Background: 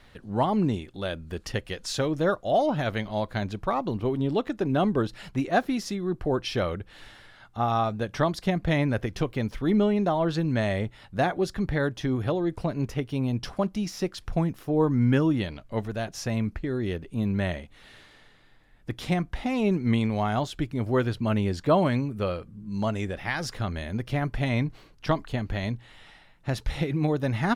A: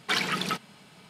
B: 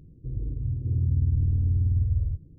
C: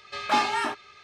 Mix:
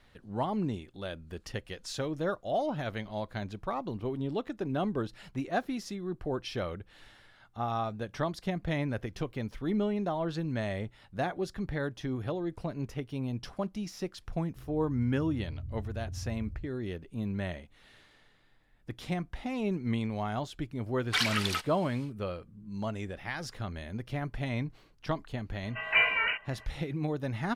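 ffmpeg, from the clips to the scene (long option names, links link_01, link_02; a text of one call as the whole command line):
ffmpeg -i bed.wav -i cue0.wav -i cue1.wav -i cue2.wav -filter_complex "[0:a]volume=-7.5dB[link_01];[1:a]highpass=frequency=1400:poles=1[link_02];[3:a]lowpass=frequency=2700:width_type=q:width=0.5098,lowpass=frequency=2700:width_type=q:width=0.6013,lowpass=frequency=2700:width_type=q:width=0.9,lowpass=frequency=2700:width_type=q:width=2.563,afreqshift=-3200[link_03];[2:a]atrim=end=2.58,asetpts=PTS-STARTPTS,volume=-16.5dB,afade=type=in:duration=0.004:curve=hsin,afade=type=out:start_time=2.576:duration=0.004:curve=hsin,adelay=14310[link_04];[link_02]atrim=end=1.09,asetpts=PTS-STARTPTS,afade=type=in:duration=0.1,afade=type=out:start_time=0.99:duration=0.1,adelay=21040[link_05];[link_03]atrim=end=1.03,asetpts=PTS-STARTPTS,volume=-1.5dB,afade=type=in:duration=0.004:curve=hsin,afade=type=out:start_time=1.026:duration=0.004:curve=hsin,adelay=25630[link_06];[link_01][link_04][link_05][link_06]amix=inputs=4:normalize=0" out.wav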